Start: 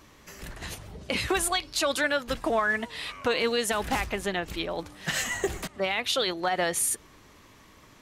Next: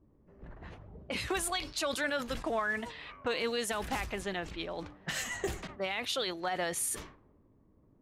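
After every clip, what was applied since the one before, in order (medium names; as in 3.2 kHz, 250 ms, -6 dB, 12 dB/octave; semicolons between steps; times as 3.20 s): level-controlled noise filter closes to 330 Hz, open at -26 dBFS; decay stretcher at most 110 dB/s; trim -7 dB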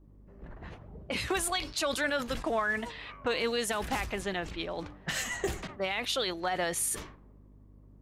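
hum 50 Hz, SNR 22 dB; trim +2.5 dB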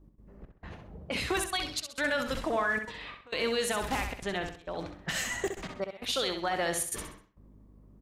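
trance gate "x.xxx..xxxxxxxx" 167 bpm -24 dB; on a send: feedback delay 65 ms, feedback 35%, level -7 dB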